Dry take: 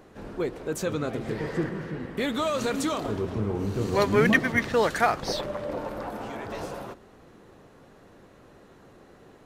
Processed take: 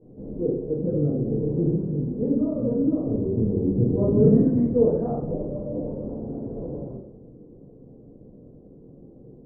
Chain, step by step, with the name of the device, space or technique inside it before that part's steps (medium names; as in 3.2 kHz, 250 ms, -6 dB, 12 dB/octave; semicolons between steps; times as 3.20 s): next room (low-pass 480 Hz 24 dB/octave; reverberation RT60 0.70 s, pre-delay 11 ms, DRR -11.5 dB); trim -6 dB